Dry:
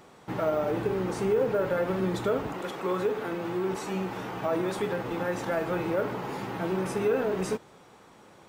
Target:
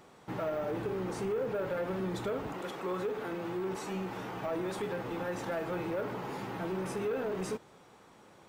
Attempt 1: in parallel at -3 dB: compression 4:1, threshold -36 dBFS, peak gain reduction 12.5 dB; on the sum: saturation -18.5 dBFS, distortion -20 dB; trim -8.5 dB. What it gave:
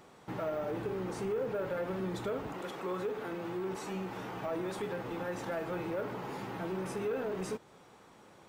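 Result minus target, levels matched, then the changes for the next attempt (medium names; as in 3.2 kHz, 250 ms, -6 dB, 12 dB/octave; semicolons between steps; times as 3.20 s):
compression: peak gain reduction +7 dB
change: compression 4:1, threshold -26.5 dBFS, peak gain reduction 5.5 dB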